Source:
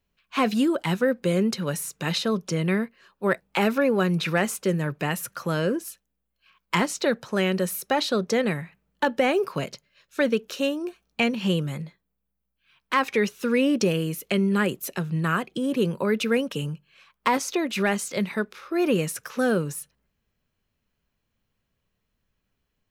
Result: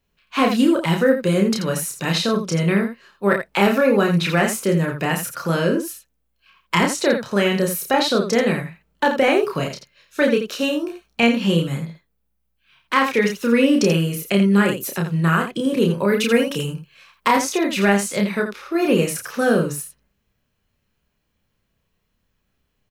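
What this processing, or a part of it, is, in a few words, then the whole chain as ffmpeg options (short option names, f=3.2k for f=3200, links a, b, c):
slapback doubling: -filter_complex "[0:a]asettb=1/sr,asplit=3[a][b][c];[a]atrim=end=16.084[d];[b]atrim=start=16.08:end=17.33,asetpts=PTS-STARTPTS,afade=t=in:d=0.004:c=qsin,afade=t=out:st=1.246:d=0.004:c=qsin,highshelf=f=6.6k:g=5.5[e];[c]atrim=start=17.326[f];[d][e]acrossfade=d=0.004:c1=hsin:c2=qsin[g];[g][f]acrossfade=d=0.004:c1=qsin:c2=hsin,asplit=3[h][i][j];[i]adelay=30,volume=-3dB[k];[j]adelay=85,volume=-8dB[l];[h][k][l]amix=inputs=3:normalize=0,volume=3.5dB"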